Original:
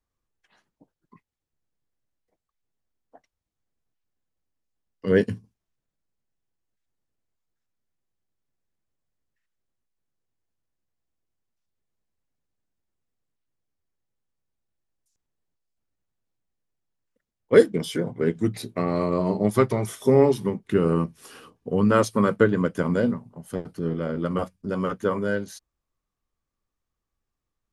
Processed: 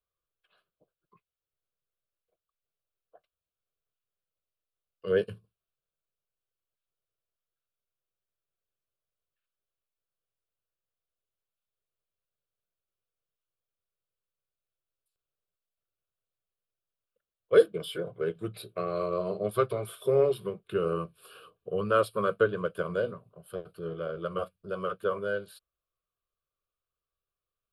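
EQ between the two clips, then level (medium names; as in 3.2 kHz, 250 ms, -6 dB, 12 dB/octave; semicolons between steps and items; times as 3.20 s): bass shelf 140 Hz -10.5 dB; peaking EQ 6.4 kHz -5 dB 0.6 oct; static phaser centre 1.3 kHz, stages 8; -2.5 dB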